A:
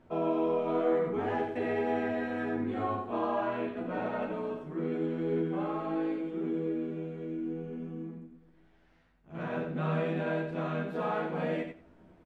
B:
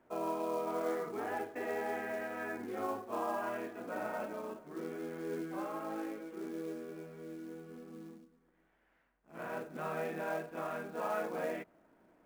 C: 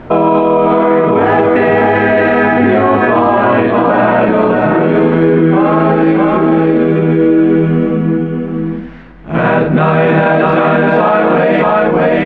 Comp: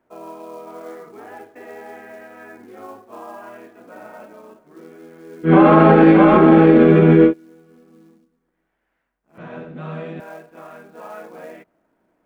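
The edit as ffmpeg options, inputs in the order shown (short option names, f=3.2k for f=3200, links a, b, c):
-filter_complex "[1:a]asplit=3[a][b][c];[a]atrim=end=5.53[d];[2:a]atrim=start=5.43:end=7.34[e];[b]atrim=start=7.24:end=9.382[f];[0:a]atrim=start=9.378:end=10.202[g];[c]atrim=start=10.198[h];[d][e]acrossfade=d=0.1:c1=tri:c2=tri[i];[i][f]acrossfade=d=0.1:c1=tri:c2=tri[j];[j][g]acrossfade=d=0.004:c1=hsin:c2=hsin[k];[k][h]acrossfade=d=0.004:c1=hsin:c2=hsin"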